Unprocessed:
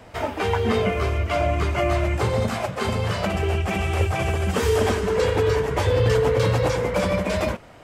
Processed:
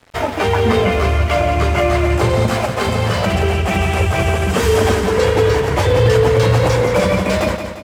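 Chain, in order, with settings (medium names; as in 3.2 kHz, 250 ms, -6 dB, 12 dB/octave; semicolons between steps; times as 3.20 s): in parallel at 0 dB: peak limiter -17.5 dBFS, peak gain reduction 9 dB; on the sum: crossover distortion -35.5 dBFS; feedback delay 174 ms, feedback 49%, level -8.5 dB; trim +3 dB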